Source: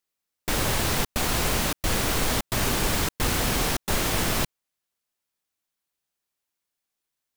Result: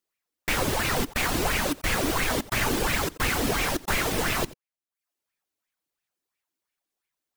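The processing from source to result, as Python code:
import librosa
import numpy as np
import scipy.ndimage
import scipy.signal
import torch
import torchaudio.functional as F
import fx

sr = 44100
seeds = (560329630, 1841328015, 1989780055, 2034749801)

y = x + 10.0 ** (-10.0 / 20.0) * np.pad(x, (int(87 * sr / 1000.0), 0))[:len(x)]
y = fx.dereverb_blind(y, sr, rt60_s=0.54)
y = fx.bell_lfo(y, sr, hz=2.9, low_hz=270.0, high_hz=2400.0, db=12)
y = y * 10.0 ** (-2.5 / 20.0)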